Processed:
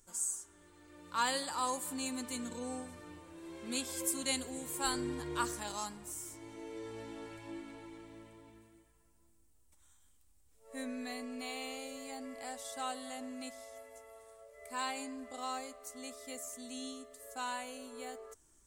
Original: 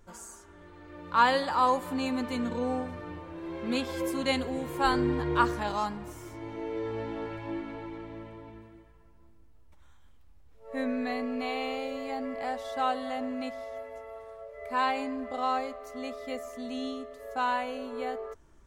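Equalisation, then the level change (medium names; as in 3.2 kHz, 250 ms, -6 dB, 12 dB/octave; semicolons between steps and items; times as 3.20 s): pre-emphasis filter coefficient 0.8; peaking EQ 290 Hz +4 dB 0.65 oct; peaking EQ 8.3 kHz +12.5 dB 0.8 oct; +1.0 dB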